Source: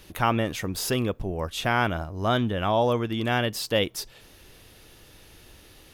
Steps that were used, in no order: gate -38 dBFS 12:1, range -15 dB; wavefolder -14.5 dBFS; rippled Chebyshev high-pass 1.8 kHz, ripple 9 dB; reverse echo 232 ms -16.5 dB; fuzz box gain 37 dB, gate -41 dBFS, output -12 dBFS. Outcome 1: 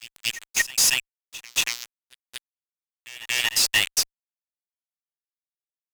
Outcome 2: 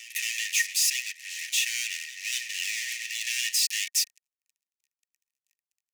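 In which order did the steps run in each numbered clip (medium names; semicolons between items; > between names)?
wavefolder > rippled Chebyshev high-pass > gate > fuzz box > reverse echo; fuzz box > gate > reverse echo > wavefolder > rippled Chebyshev high-pass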